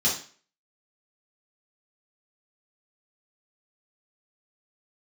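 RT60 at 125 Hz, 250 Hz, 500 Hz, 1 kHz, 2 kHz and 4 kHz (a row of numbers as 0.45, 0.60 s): 0.40, 0.40, 0.40, 0.40, 0.45, 0.40 s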